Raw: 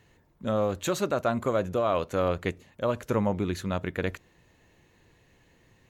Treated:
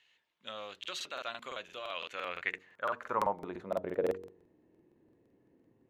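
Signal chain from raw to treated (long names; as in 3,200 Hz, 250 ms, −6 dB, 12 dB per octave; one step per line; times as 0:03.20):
hum removal 46.83 Hz, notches 10
band-pass filter sweep 3,100 Hz → 310 Hz, 0:01.96–0:04.54
regular buffer underruns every 0.17 s, samples 2,048, repeat, from 0:00.79
level +3.5 dB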